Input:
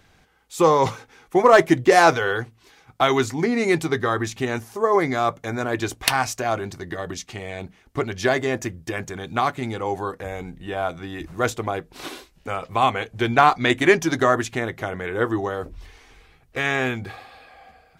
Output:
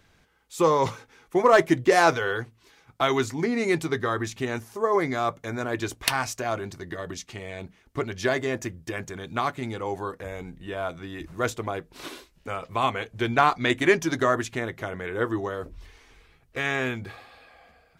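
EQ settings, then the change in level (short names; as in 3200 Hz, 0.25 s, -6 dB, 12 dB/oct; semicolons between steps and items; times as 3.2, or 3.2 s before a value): notch 770 Hz, Q 12; -4.0 dB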